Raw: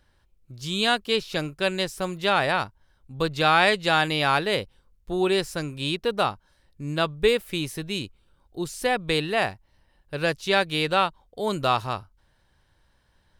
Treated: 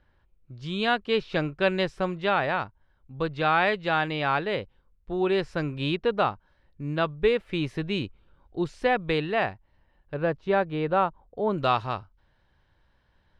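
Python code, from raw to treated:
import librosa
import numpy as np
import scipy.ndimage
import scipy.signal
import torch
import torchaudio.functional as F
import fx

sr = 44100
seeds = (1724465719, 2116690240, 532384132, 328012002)

y = fx.lowpass(x, sr, hz=fx.steps((0.0, 2500.0), (10.14, 1200.0), (11.58, 3500.0)), slope=12)
y = fx.rider(y, sr, range_db=3, speed_s=0.5)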